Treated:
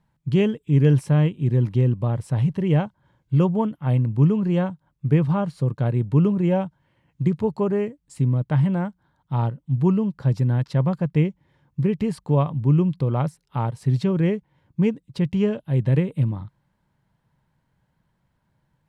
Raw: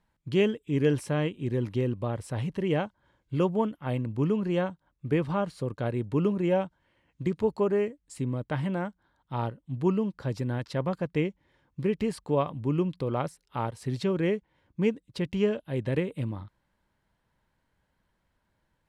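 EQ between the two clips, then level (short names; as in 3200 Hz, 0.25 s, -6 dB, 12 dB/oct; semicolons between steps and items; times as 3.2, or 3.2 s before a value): bell 140 Hz +13.5 dB 1.1 oct; bell 870 Hz +3.5 dB 0.84 oct; 0.0 dB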